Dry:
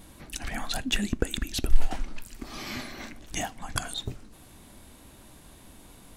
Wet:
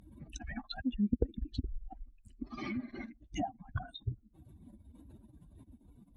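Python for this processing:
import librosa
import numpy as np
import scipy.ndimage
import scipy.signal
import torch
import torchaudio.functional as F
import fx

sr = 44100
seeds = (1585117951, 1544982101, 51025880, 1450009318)

y = fx.spec_expand(x, sr, power=2.5)
y = scipy.signal.sosfilt(scipy.signal.butter(2, 63.0, 'highpass', fs=sr, output='sos'), y)
y = fx.env_lowpass_down(y, sr, base_hz=730.0, full_db=-30.5)
y = fx.doppler_dist(y, sr, depth_ms=0.12)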